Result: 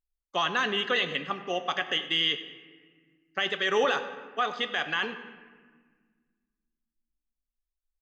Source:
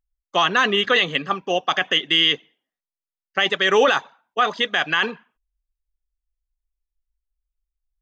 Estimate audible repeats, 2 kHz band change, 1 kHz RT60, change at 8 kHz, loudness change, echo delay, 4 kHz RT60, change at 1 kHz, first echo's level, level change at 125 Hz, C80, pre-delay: 2, −8.5 dB, 1.5 s, can't be measured, −8.5 dB, 98 ms, 0.95 s, −8.5 dB, −18.5 dB, −8.5 dB, 11.5 dB, 4 ms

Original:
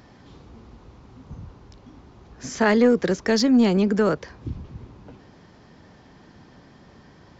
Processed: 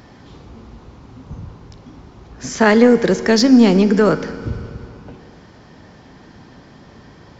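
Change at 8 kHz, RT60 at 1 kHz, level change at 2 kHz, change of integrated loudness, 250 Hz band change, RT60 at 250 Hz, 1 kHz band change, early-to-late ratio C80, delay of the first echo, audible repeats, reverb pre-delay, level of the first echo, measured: can't be measured, 2.6 s, +7.0 dB, +6.0 dB, +7.0 dB, 2.6 s, +6.5 dB, 13.5 dB, no echo audible, no echo audible, 9 ms, no echo audible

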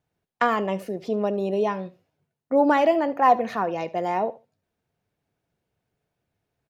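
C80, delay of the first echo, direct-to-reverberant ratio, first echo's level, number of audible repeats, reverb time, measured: no reverb audible, 73 ms, no reverb audible, −19.0 dB, 2, no reverb audible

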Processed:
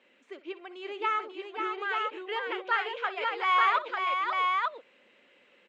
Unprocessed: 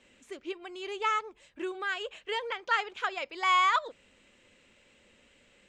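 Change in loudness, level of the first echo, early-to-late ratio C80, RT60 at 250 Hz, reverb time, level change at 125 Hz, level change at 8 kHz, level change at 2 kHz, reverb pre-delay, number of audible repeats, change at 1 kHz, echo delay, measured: +1.5 dB, −16.0 dB, no reverb audible, no reverb audible, no reverb audible, can't be measured, below −10 dB, +2.0 dB, no reverb audible, 3, +2.5 dB, 60 ms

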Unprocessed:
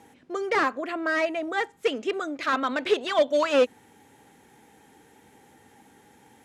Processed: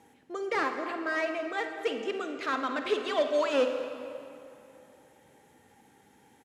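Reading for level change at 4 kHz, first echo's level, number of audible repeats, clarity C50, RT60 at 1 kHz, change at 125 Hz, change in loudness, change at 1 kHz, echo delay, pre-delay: −5.0 dB, −13.5 dB, 2, 6.0 dB, 2.6 s, can't be measured, −5.0 dB, −5.0 dB, 51 ms, 33 ms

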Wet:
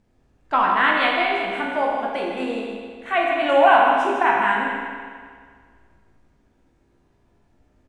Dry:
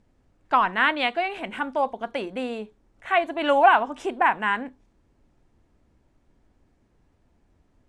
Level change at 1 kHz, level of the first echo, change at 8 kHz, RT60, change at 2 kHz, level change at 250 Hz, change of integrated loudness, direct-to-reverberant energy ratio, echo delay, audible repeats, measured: +3.5 dB, −7.5 dB, can't be measured, 1.9 s, +4.0 dB, +3.5 dB, +3.5 dB, −3.0 dB, 158 ms, 1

